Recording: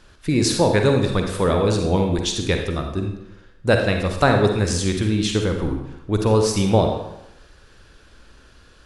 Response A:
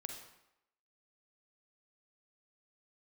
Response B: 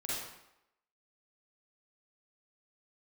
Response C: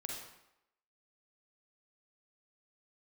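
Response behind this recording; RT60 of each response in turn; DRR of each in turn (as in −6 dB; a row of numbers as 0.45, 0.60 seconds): A; 0.85, 0.85, 0.85 seconds; 3.5, −8.0, −1.0 decibels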